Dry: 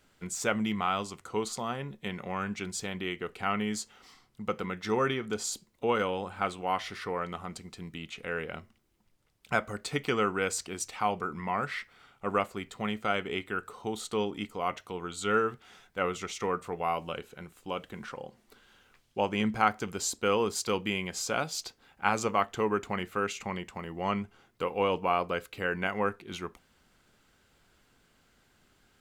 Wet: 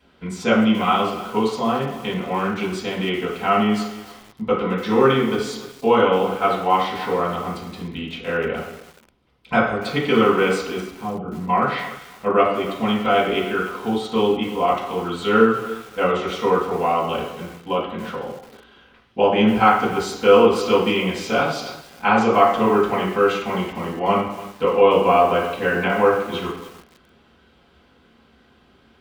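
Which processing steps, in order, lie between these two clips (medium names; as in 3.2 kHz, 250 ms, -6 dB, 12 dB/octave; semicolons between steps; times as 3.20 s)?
10.80–11.49 s: FFT filter 180 Hz 0 dB, 640 Hz -13 dB, 2.5 kHz -21 dB; reverberation RT60 0.65 s, pre-delay 3 ms, DRR -9 dB; bit-crushed delay 293 ms, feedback 35%, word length 5-bit, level -15 dB; trim -1 dB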